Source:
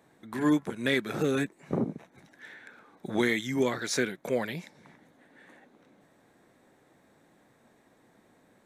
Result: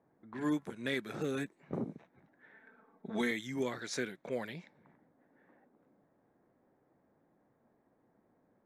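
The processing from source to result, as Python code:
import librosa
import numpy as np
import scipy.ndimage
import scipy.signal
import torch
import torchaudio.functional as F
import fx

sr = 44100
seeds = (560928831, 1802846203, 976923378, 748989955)

y = fx.env_lowpass(x, sr, base_hz=1100.0, full_db=-26.0)
y = fx.comb(y, sr, ms=4.5, depth=0.7, at=(2.53, 3.31))
y = y * 10.0 ** (-8.5 / 20.0)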